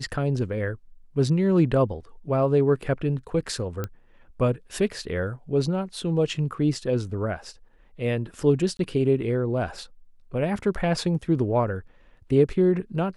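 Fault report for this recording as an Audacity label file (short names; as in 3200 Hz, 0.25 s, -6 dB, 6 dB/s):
3.840000	3.840000	pop -16 dBFS
8.770000	8.790000	gap 22 ms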